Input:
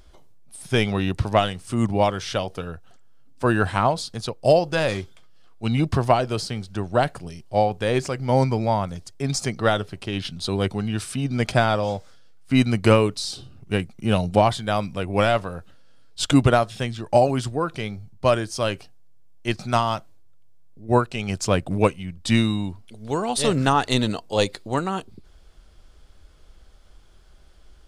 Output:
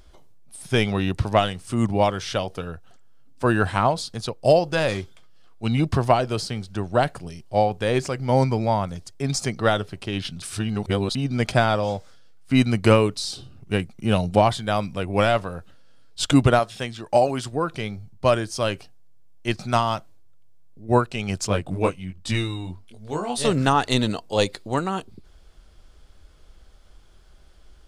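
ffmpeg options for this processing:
-filter_complex "[0:a]asettb=1/sr,asplit=3[s0][s1][s2];[s0]atrim=end=16.594[s3];[s1]atrim=start=16.59:end=17.53,asetpts=PTS-STARTPTS,afade=t=in:d=0.004:c=qsin,afade=t=out:st=0.936:d=0.004:c=qsin,lowshelf=f=220:g=-8.5[s4];[s2]atrim=start=17.526[s5];[s3][s4]acrossfade=d=0.004:c1=hsin:c2=qsin[s6];[s6][s5]acrossfade=d=0.004:c1=qsin:c2=hsin,asettb=1/sr,asplit=3[s7][s8][s9];[s7]atrim=end=21.474[s10];[s8]atrim=start=21.47:end=23.45,asetpts=PTS-STARTPTS,afade=t=in:d=0.004:c=qsin,afade=t=out:st=1.976:d=0.004:c=qsin,flanger=delay=19.5:depth=3:speed=1.2[s11];[s9]atrim=start=23.446[s12];[s10][s11]acrossfade=d=0.004:c1=hsin:c2=qsin[s13];[s13][s12]acrossfade=d=0.004:c1=qsin:c2=hsin,asplit=3[s14][s15][s16];[s14]atrim=end=10.422[s17];[s15]atrim=start=10.418:end=11.152,asetpts=PTS-STARTPTS,areverse[s18];[s16]atrim=start=11.148[s19];[s17][s18]acrossfade=d=0.004:c1=hsin:c2=hsin[s20];[s20][s19]acrossfade=d=0.004:c1=hsin:c2=hsin"

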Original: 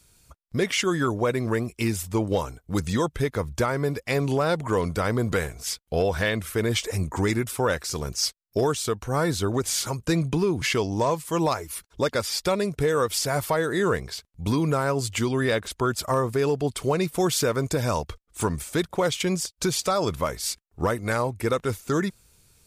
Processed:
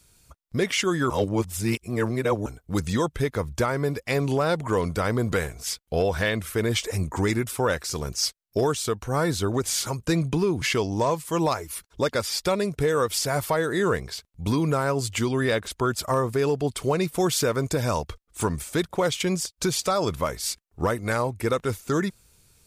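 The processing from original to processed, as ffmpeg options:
-filter_complex "[0:a]asplit=3[s0][s1][s2];[s0]atrim=end=1.102[s3];[s1]atrim=start=1.098:end=2.462,asetpts=PTS-STARTPTS,areverse[s4];[s2]atrim=start=2.458[s5];[s3][s4]acrossfade=d=0.004:c1=hsin:c2=hsin[s6];[s6][s5]acrossfade=d=0.004:c1=hsin:c2=hsin"

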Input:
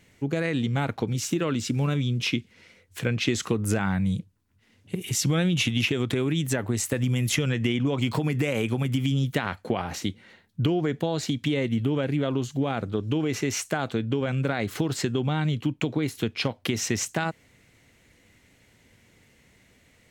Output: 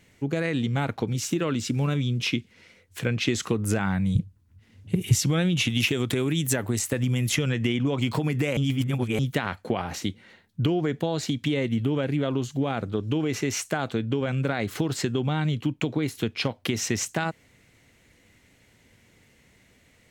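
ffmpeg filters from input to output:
-filter_complex "[0:a]asettb=1/sr,asplit=3[s0][s1][s2];[s0]atrim=end=4.154[s3];[s1]atrim=start=4.15:end=5.19,asetpts=PTS-STARTPTS,afade=t=in:d=0.004:c=qsin,afade=t=out:st=1.036:d=0.004:c=qsin,equalizer=f=78:w=0.57:g=14.5[s4];[s2]atrim=start=5.186[s5];[s3][s4]acrossfade=d=0.004:c1=hsin:c2=qsin[s6];[s6][s5]acrossfade=d=0.004:c1=qsin:c2=hsin,asettb=1/sr,asplit=3[s7][s8][s9];[s7]atrim=end=5.704[s10];[s8]atrim=start=5.7:end=6.79,asetpts=PTS-STARTPTS,afade=t=in:d=0.004:c=qsin,afade=t=out:st=1.086:d=0.004:c=qsin,highshelf=f=7100:g=11[s11];[s9]atrim=start=6.786[s12];[s10][s11]acrossfade=d=0.004:c1=hsin:c2=qsin[s13];[s13][s12]acrossfade=d=0.004:c1=qsin:c2=hsin,asplit=3[s14][s15][s16];[s14]atrim=end=8.572[s17];[s15]atrim=start=8.568:end=9.192,asetpts=PTS-STARTPTS,areverse[s18];[s16]atrim=start=9.188[s19];[s17][s18]acrossfade=d=0.004:c1=hsin:c2=hsin[s20];[s20][s19]acrossfade=d=0.004:c1=hsin:c2=hsin"

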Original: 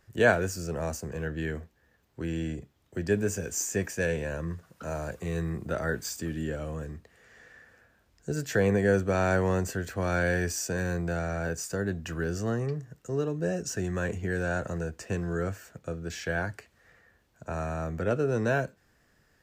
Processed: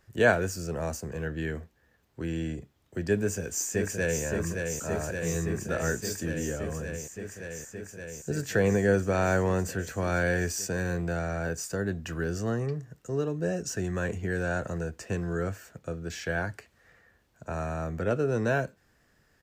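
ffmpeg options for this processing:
-filter_complex "[0:a]asplit=2[s0][s1];[s1]afade=t=in:st=3.17:d=0.01,afade=t=out:st=4.22:d=0.01,aecho=0:1:570|1140|1710|2280|2850|3420|3990|4560|5130|5700|6270|6840:0.595662|0.506313|0.430366|0.365811|0.310939|0.264298|0.224654|0.190956|0.162312|0.137965|0.117271|0.09968[s2];[s0][s2]amix=inputs=2:normalize=0"

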